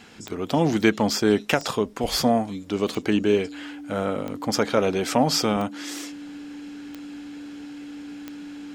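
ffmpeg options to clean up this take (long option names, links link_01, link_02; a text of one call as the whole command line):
ffmpeg -i in.wav -af "adeclick=threshold=4,bandreject=frequency=290:width=30" out.wav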